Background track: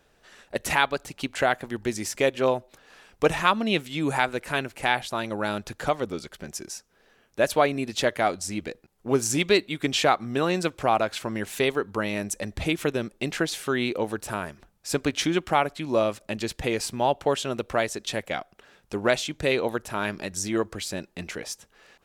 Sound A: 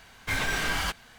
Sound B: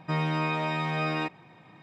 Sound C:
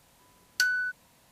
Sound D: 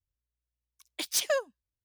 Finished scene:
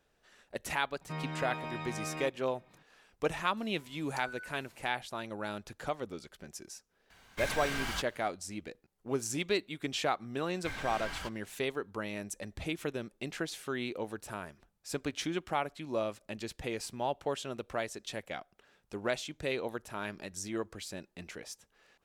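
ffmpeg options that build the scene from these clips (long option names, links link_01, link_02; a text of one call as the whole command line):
ffmpeg -i bed.wav -i cue0.wav -i cue1.wav -i cue2.wav -filter_complex "[1:a]asplit=2[link_01][link_02];[0:a]volume=-10.5dB[link_03];[3:a]acompressor=threshold=-44dB:ratio=6:attack=3.2:release=140:knee=1:detection=peak[link_04];[link_02]highshelf=frequency=8500:gain=-8[link_05];[2:a]atrim=end=1.82,asetpts=PTS-STARTPTS,volume=-11dB,afade=type=in:duration=0.004:curve=hsin,afade=type=out:start_time=1.816:duration=0.004:curve=hsin,adelay=1010[link_06];[link_04]atrim=end=1.31,asetpts=PTS-STARTPTS,volume=-2dB,afade=type=in:duration=0.004:curve=hsin,afade=type=out:start_time=1.306:duration=0.004:curve=hsin,adelay=157437S[link_07];[link_01]atrim=end=1.18,asetpts=PTS-STARTPTS,volume=-8dB,afade=type=in:duration=0.004:curve=hsin,afade=type=out:start_time=1.176:duration=0.004:curve=hsin,adelay=7100[link_08];[link_05]atrim=end=1.18,asetpts=PTS-STARTPTS,volume=-12.5dB,afade=type=in:duration=0.004:curve=hsin,afade=type=out:start_time=1.176:duration=0.004:curve=hsin,adelay=10370[link_09];[link_03][link_06][link_07][link_08][link_09]amix=inputs=5:normalize=0" out.wav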